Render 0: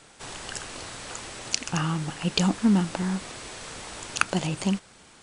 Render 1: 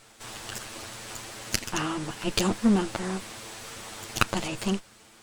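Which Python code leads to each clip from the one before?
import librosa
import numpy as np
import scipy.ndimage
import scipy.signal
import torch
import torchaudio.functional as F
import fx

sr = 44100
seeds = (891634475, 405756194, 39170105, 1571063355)

y = fx.lower_of_two(x, sr, delay_ms=9.0)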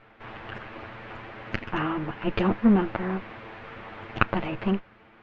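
y = scipy.signal.sosfilt(scipy.signal.butter(4, 2400.0, 'lowpass', fs=sr, output='sos'), x)
y = F.gain(torch.from_numpy(y), 2.5).numpy()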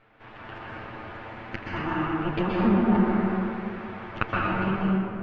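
y = fx.rev_plate(x, sr, seeds[0], rt60_s=2.6, hf_ratio=0.45, predelay_ms=110, drr_db=-5.5)
y = F.gain(torch.from_numpy(y), -5.5).numpy()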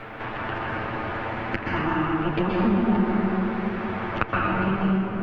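y = fx.band_squash(x, sr, depth_pct=70)
y = F.gain(torch.from_numpy(y), 2.0).numpy()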